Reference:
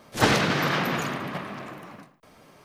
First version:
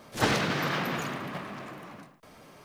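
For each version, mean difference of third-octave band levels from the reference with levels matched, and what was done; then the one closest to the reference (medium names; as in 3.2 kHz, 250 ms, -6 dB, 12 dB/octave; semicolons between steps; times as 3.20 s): 2.5 dB: companding laws mixed up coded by mu; trim -5.5 dB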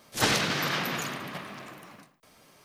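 3.5 dB: treble shelf 2.6 kHz +10.5 dB; trim -7 dB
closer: first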